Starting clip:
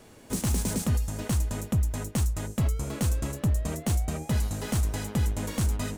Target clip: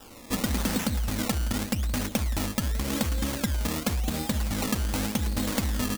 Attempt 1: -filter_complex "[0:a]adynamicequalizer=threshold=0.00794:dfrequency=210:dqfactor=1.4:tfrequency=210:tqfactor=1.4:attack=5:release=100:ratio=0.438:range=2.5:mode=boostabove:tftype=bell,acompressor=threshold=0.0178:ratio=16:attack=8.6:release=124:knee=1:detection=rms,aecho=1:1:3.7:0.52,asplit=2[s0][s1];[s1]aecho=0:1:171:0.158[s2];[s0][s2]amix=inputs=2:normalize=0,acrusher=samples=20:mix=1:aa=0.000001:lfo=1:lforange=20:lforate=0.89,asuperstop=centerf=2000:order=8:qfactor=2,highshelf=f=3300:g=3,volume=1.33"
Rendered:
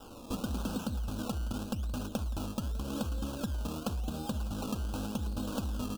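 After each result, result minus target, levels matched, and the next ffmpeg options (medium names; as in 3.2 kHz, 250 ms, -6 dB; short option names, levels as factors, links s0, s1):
compression: peak gain reduction +7 dB; 2 kHz band -6.5 dB; 8 kHz band -5.5 dB
-filter_complex "[0:a]adynamicequalizer=threshold=0.00794:dfrequency=210:dqfactor=1.4:tfrequency=210:tqfactor=1.4:attack=5:release=100:ratio=0.438:range=2.5:mode=boostabove:tftype=bell,acompressor=threshold=0.0422:ratio=16:attack=8.6:release=124:knee=1:detection=rms,aecho=1:1:3.7:0.52,asplit=2[s0][s1];[s1]aecho=0:1:171:0.158[s2];[s0][s2]amix=inputs=2:normalize=0,acrusher=samples=20:mix=1:aa=0.000001:lfo=1:lforange=20:lforate=0.89,asuperstop=centerf=2000:order=8:qfactor=2,highshelf=f=3300:g=3,volume=1.33"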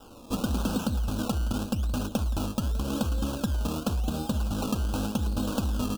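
2 kHz band -7.0 dB; 8 kHz band -6.0 dB
-filter_complex "[0:a]adynamicequalizer=threshold=0.00794:dfrequency=210:dqfactor=1.4:tfrequency=210:tqfactor=1.4:attack=5:release=100:ratio=0.438:range=2.5:mode=boostabove:tftype=bell,acompressor=threshold=0.0422:ratio=16:attack=8.6:release=124:knee=1:detection=rms,aecho=1:1:3.7:0.52,asplit=2[s0][s1];[s1]aecho=0:1:171:0.158[s2];[s0][s2]amix=inputs=2:normalize=0,acrusher=samples=20:mix=1:aa=0.000001:lfo=1:lforange=20:lforate=0.89,highshelf=f=3300:g=3,volume=1.33"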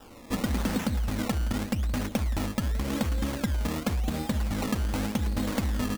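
8 kHz band -6.0 dB
-filter_complex "[0:a]adynamicequalizer=threshold=0.00794:dfrequency=210:dqfactor=1.4:tfrequency=210:tqfactor=1.4:attack=5:release=100:ratio=0.438:range=2.5:mode=boostabove:tftype=bell,acompressor=threshold=0.0422:ratio=16:attack=8.6:release=124:knee=1:detection=rms,aecho=1:1:3.7:0.52,asplit=2[s0][s1];[s1]aecho=0:1:171:0.158[s2];[s0][s2]amix=inputs=2:normalize=0,acrusher=samples=20:mix=1:aa=0.000001:lfo=1:lforange=20:lforate=0.89,highshelf=f=3300:g=11.5,volume=1.33"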